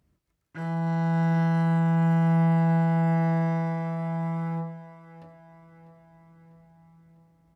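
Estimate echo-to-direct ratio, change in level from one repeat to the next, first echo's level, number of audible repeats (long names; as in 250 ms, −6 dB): −14.5 dB, −5.0 dB, −16.0 dB, 4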